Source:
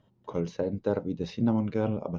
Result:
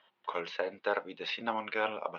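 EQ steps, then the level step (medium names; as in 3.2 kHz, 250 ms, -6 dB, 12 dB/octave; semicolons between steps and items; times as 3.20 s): high-pass 1.1 kHz 12 dB/octave; low-pass 3.1 kHz 24 dB/octave; treble shelf 2.2 kHz +10 dB; +9.0 dB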